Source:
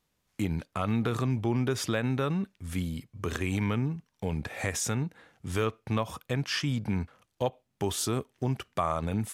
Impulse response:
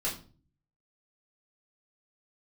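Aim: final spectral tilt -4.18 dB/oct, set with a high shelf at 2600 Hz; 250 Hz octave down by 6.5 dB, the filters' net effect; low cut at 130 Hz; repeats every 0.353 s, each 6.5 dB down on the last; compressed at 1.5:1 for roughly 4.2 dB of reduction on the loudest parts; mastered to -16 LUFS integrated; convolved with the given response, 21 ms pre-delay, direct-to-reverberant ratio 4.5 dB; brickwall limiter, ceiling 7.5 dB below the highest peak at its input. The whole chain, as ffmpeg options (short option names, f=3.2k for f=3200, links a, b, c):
-filter_complex "[0:a]highpass=130,equalizer=f=250:t=o:g=-8,highshelf=f=2.6k:g=3.5,acompressor=threshold=-36dB:ratio=1.5,alimiter=level_in=1dB:limit=-24dB:level=0:latency=1,volume=-1dB,aecho=1:1:353|706|1059|1412|1765|2118:0.473|0.222|0.105|0.0491|0.0231|0.0109,asplit=2[a][b];[1:a]atrim=start_sample=2205,adelay=21[c];[b][c]afir=irnorm=-1:irlink=0,volume=-10dB[d];[a][d]amix=inputs=2:normalize=0,volume=20dB"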